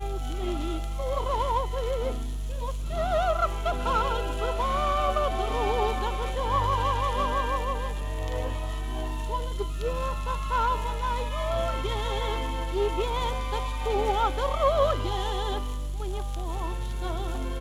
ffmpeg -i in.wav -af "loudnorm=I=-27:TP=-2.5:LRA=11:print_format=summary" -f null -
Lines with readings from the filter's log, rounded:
Input Integrated:    -28.8 LUFS
Input True Peak:     -12.1 dBTP
Input LRA:             3.4 LU
Input Threshold:     -38.8 LUFS